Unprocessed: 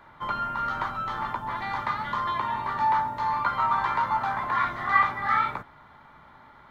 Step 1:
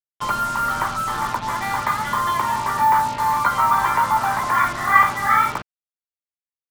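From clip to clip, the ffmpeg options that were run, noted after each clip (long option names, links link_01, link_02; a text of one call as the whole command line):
ffmpeg -i in.wav -af "bandreject=frequency=3800:width=14,afftfilt=real='re*gte(hypot(re,im),0.00891)':imag='im*gte(hypot(re,im),0.00891)':win_size=1024:overlap=0.75,acrusher=bits=5:mix=0:aa=0.5,volume=7dB" out.wav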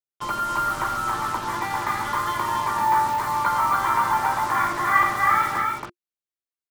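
ffmpeg -i in.wav -filter_complex "[0:a]equalizer=frequency=350:width_type=o:width=0.22:gain=9.5,asplit=2[link_01][link_02];[link_02]aecho=0:1:87.46|277:0.355|0.708[link_03];[link_01][link_03]amix=inputs=2:normalize=0,volume=-5dB" out.wav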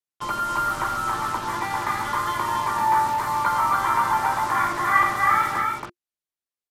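ffmpeg -i in.wav -af "aresample=32000,aresample=44100" out.wav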